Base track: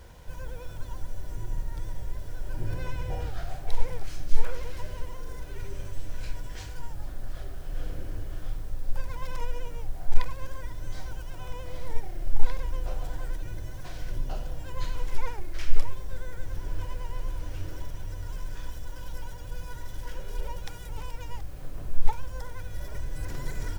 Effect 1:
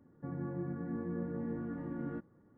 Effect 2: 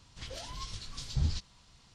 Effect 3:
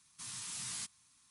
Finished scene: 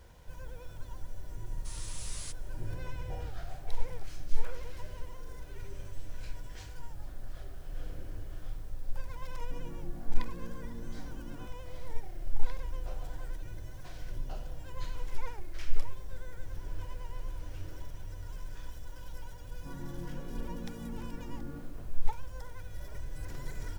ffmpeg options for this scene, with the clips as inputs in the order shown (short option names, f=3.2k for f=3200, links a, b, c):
-filter_complex "[1:a]asplit=2[a][b];[0:a]volume=-6.5dB[c];[b]aecho=1:1:55.39|227.4:0.316|0.355[d];[3:a]atrim=end=1.3,asetpts=PTS-STARTPTS,volume=-2.5dB,afade=t=in:d=0.004:c=hsin,afade=t=out:st=1.296:d=0.004:c=hsin,adelay=1460[e];[a]atrim=end=2.57,asetpts=PTS-STARTPTS,volume=-8.5dB,afade=t=in:d=0.004:c=hsin,afade=t=out:st=2.566:d=0.004:c=hsin,adelay=9270[f];[d]atrim=end=2.57,asetpts=PTS-STARTPTS,volume=-5.5dB,afade=t=in:d=0.004:c=hsin,afade=t=out:st=2.566:d=0.004:c=hsin,adelay=19420[g];[c][e][f][g]amix=inputs=4:normalize=0"